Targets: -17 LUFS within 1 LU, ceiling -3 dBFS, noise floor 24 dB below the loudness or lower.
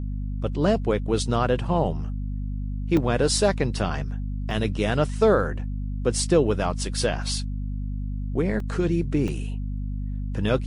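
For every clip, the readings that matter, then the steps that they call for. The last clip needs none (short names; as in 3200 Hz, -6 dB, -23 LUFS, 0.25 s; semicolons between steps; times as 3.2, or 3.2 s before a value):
dropouts 4; longest dropout 2.2 ms; hum 50 Hz; harmonics up to 250 Hz; hum level -26 dBFS; loudness -25.5 LUFS; peak -8.5 dBFS; loudness target -17.0 LUFS
-> interpolate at 2.97/4.51/8.6/9.28, 2.2 ms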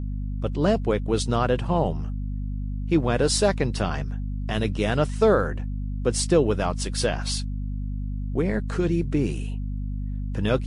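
dropouts 0; hum 50 Hz; harmonics up to 250 Hz; hum level -26 dBFS
-> de-hum 50 Hz, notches 5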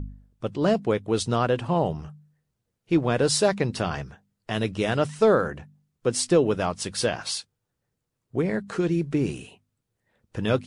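hum none; loudness -25.0 LUFS; peak -8.5 dBFS; loudness target -17.0 LUFS
-> gain +8 dB; limiter -3 dBFS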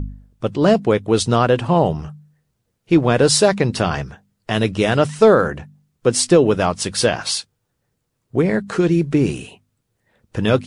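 loudness -17.5 LUFS; peak -3.0 dBFS; noise floor -73 dBFS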